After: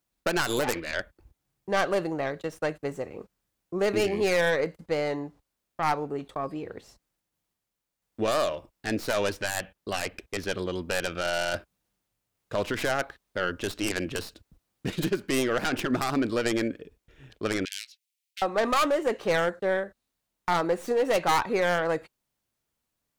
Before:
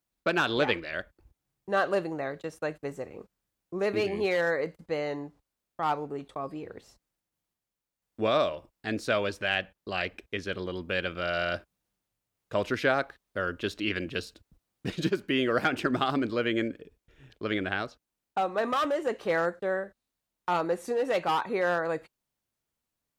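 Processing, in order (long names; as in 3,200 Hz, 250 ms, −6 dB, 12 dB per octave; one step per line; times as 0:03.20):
stylus tracing distortion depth 0.36 ms
0:17.65–0:18.42: Butterworth high-pass 2,100 Hz 48 dB per octave
brickwall limiter −20 dBFS, peak gain reduction 8 dB
level +3.5 dB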